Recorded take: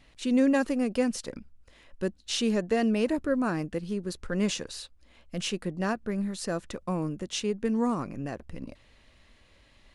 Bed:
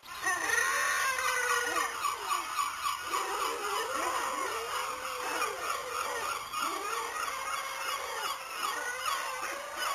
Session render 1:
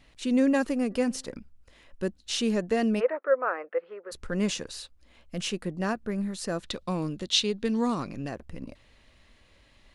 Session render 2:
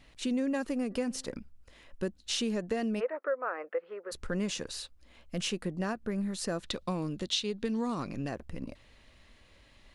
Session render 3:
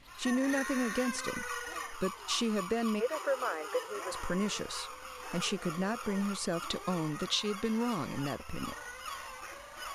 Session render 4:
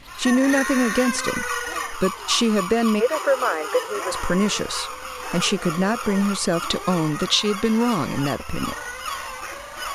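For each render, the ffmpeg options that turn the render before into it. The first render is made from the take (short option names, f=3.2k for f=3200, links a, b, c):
-filter_complex "[0:a]asplit=3[a][b][c];[a]afade=t=out:st=0.9:d=0.02[d];[b]bandreject=f=130.5:t=h:w=4,bandreject=f=261:t=h:w=4,bandreject=f=391.5:t=h:w=4,bandreject=f=522:t=h:w=4,bandreject=f=652.5:t=h:w=4,bandreject=f=783:t=h:w=4,bandreject=f=913.5:t=h:w=4,bandreject=f=1.044k:t=h:w=4,bandreject=f=1.1745k:t=h:w=4,bandreject=f=1.305k:t=h:w=4,bandreject=f=1.4355k:t=h:w=4,bandreject=f=1.566k:t=h:w=4,bandreject=f=1.6965k:t=h:w=4,bandreject=f=1.827k:t=h:w=4,bandreject=f=1.9575k:t=h:w=4,afade=t=in:st=0.9:d=0.02,afade=t=out:st=1.31:d=0.02[e];[c]afade=t=in:st=1.31:d=0.02[f];[d][e][f]amix=inputs=3:normalize=0,asplit=3[g][h][i];[g]afade=t=out:st=2.99:d=0.02[j];[h]highpass=f=500:w=0.5412,highpass=f=500:w=1.3066,equalizer=f=510:t=q:w=4:g=10,equalizer=f=1.3k:t=q:w=4:g=8,equalizer=f=2k:t=q:w=4:g=4,lowpass=f=2.2k:w=0.5412,lowpass=f=2.2k:w=1.3066,afade=t=in:st=2.99:d=0.02,afade=t=out:st=4.11:d=0.02[k];[i]afade=t=in:st=4.11:d=0.02[l];[j][k][l]amix=inputs=3:normalize=0,asettb=1/sr,asplit=3[m][n][o];[m]atrim=end=6.634[p];[n]atrim=start=6.63:end=8.29,asetpts=PTS-STARTPTS,afade=t=in:d=0.004:c=qsin,afade=t=out:st=1.656:d=0.004:c=qsin,equalizer=f=3.9k:t=o:w=0.82:g=14.5[q];[o]atrim=start=8.286[r];[p][q]acrossfade=d=0.004:c1=hsin:c2=qsin[s];[s][r]acrossfade=d=0.004:c1=qsin:c2=hsin"
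-af "acompressor=threshold=-29dB:ratio=4"
-filter_complex "[1:a]volume=-9dB[a];[0:a][a]amix=inputs=2:normalize=0"
-af "volume=12dB"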